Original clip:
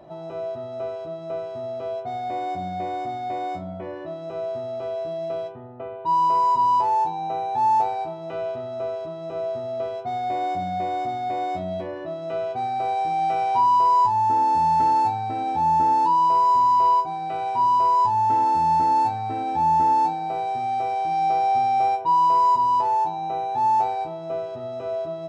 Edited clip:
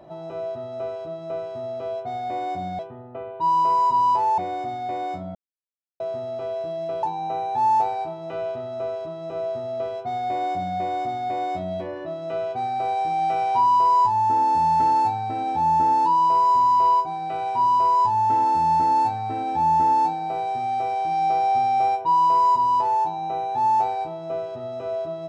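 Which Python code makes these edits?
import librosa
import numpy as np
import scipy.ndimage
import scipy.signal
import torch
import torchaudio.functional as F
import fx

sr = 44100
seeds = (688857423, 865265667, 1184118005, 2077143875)

y = fx.edit(x, sr, fx.silence(start_s=3.76, length_s=0.65),
    fx.move(start_s=5.44, length_s=1.59, to_s=2.79), tone=tone)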